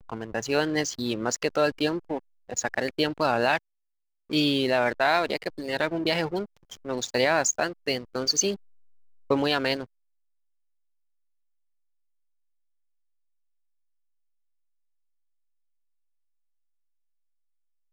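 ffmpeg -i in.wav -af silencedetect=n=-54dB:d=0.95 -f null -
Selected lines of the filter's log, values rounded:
silence_start: 9.85
silence_end: 17.92 | silence_duration: 8.07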